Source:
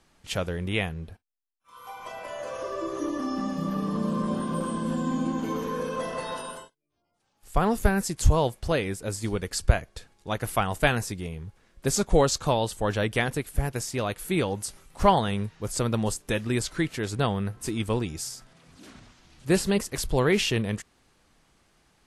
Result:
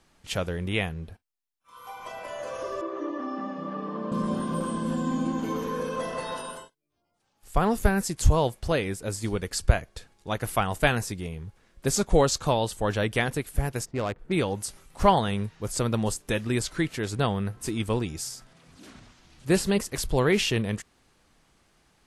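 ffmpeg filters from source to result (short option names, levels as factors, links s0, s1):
-filter_complex "[0:a]asettb=1/sr,asplit=3[s0][s1][s2];[s0]atrim=end=2.814[s3];[s1]atrim=start=2.81:end=4.12,asetpts=PTS-STARTPTS,afade=t=in:d=0.004:c=qsin,afade=t=out:st=1.306:d=0.004:c=qsin,highpass=310,lowpass=2300[s4];[s2]atrim=start=4.116[s5];[s3][s4]acrossfade=d=0.004:c1=hsin:c2=qsin[s6];[s6][s5]acrossfade=d=0.004:c1=qsin:c2=hsin,asplit=3[s7][s8][s9];[s7]afade=t=out:st=13.84:d=0.02[s10];[s8]adynamicsmooth=sensitivity=2.5:basefreq=690,afade=t=in:st=13.84:d=0.02,afade=t=out:st=14.31:d=0.02[s11];[s9]afade=t=in:st=14.31:d=0.02[s12];[s10][s11][s12]amix=inputs=3:normalize=0"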